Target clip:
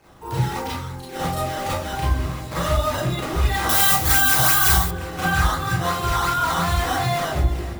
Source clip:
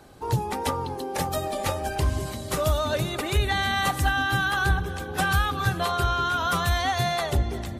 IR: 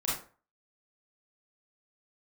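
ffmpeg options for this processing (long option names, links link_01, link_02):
-filter_complex "[0:a]asettb=1/sr,asplit=3[link_01][link_02][link_03];[link_01]atrim=end=0.654[link_04];[link_02]atrim=start=0.65:end=1.09,asetpts=PTS-STARTPTS,afade=type=in:duration=0.004:curve=qsin,afade=type=out:start_time=0.436:duration=0.004:curve=qsin,equalizer=frequency=530:width=0.47:gain=-11[link_05];[link_03]atrim=start=1.086[link_06];[link_04][link_05]acrossfade=duration=0.004:curve1=hsin:curve2=qsin[link_07];[link_07][link_06]acrossfade=duration=0.004:curve1=qsin:curve2=hsin,acrusher=samples=11:mix=1:aa=0.000001:lfo=1:lforange=17.6:lforate=2.8[link_08];[1:a]atrim=start_sample=2205[link_09];[link_08][link_09]afir=irnorm=-1:irlink=0,flanger=delay=9.1:depth=5:regen=-73:speed=1:shape=sinusoidal,asettb=1/sr,asplit=3[link_10][link_11][link_12];[link_10]atrim=end=3.694[link_13];[link_11]atrim=start=3.69:end=4.91,asetpts=PTS-STARTPTS,afade=type=in:duration=0.004:curve=qsin,afade=type=out:start_time=1.216:duration=0.004:curve=qsin,aemphasis=mode=production:type=75fm[link_14];[link_12]atrim=start=4.906[link_15];[link_13][link_14]acrossfade=duration=0.004:curve1=hsin:curve2=qsin[link_16];[link_16][link_15]acrossfade=duration=0.004:curve1=qsin:curve2=hsin"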